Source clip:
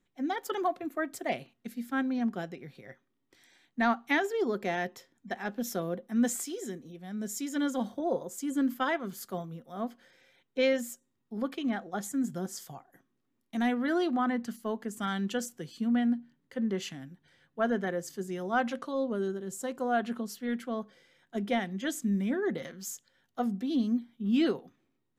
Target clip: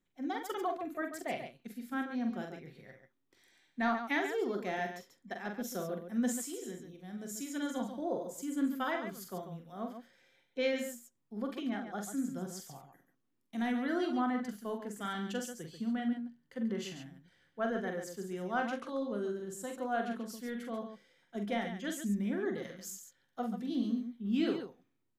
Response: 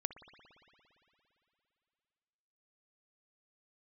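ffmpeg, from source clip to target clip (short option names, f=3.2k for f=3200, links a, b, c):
-af "aecho=1:1:44|68|139:0.531|0.168|0.376,volume=-6dB"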